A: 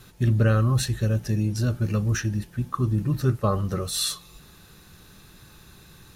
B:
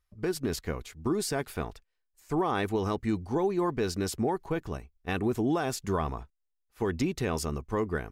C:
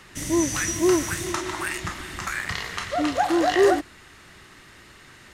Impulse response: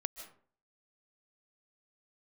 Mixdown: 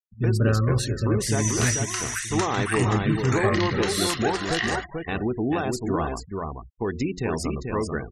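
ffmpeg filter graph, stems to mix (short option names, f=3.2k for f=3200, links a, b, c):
-filter_complex "[0:a]volume=-1.5dB,asplit=2[a][b];[b]volume=-16.5dB[c];[1:a]volume=2.5dB,asplit=3[d][e][f];[e]volume=-4dB[g];[2:a]highpass=1.4k,adelay=1050,volume=1.5dB,asplit=2[h][i];[i]volume=-16.5dB[j];[f]apad=whole_len=271287[k];[a][k]sidechaingate=range=-21dB:threshold=-48dB:ratio=16:detection=peak[l];[c][g][j]amix=inputs=3:normalize=0,aecho=0:1:438:1[m];[l][d][h][m]amix=inputs=4:normalize=0,bandreject=f=90.4:t=h:w=4,bandreject=f=180.8:t=h:w=4,bandreject=f=271.2:t=h:w=4,bandreject=f=361.6:t=h:w=4,bandreject=f=452:t=h:w=4,bandreject=f=542.4:t=h:w=4,bandreject=f=632.8:t=h:w=4,bandreject=f=723.2:t=h:w=4,afftfilt=real='re*gte(hypot(re,im),0.02)':imag='im*gte(hypot(re,im),0.02)':win_size=1024:overlap=0.75"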